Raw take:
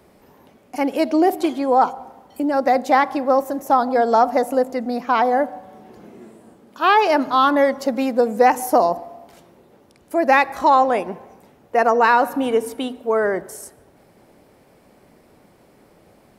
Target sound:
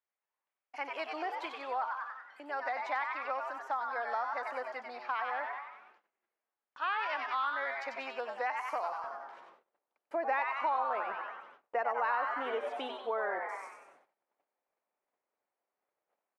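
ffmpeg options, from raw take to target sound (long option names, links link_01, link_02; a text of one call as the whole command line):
ffmpeg -i in.wav -filter_complex "[0:a]asetnsamples=nb_out_samples=441:pad=0,asendcmd='9.04 highpass f 680',highpass=1400,asplit=7[link_01][link_02][link_03][link_04][link_05][link_06][link_07];[link_02]adelay=94,afreqshift=130,volume=-5dB[link_08];[link_03]adelay=188,afreqshift=260,volume=-10.8dB[link_09];[link_04]adelay=282,afreqshift=390,volume=-16.7dB[link_10];[link_05]adelay=376,afreqshift=520,volume=-22.5dB[link_11];[link_06]adelay=470,afreqshift=650,volume=-28.4dB[link_12];[link_07]adelay=564,afreqshift=780,volume=-34.2dB[link_13];[link_01][link_08][link_09][link_10][link_11][link_12][link_13]amix=inputs=7:normalize=0,agate=range=-28dB:threshold=-52dB:ratio=16:detection=peak,lowpass=2300,acompressor=threshold=-29dB:ratio=3,volume=-4dB" out.wav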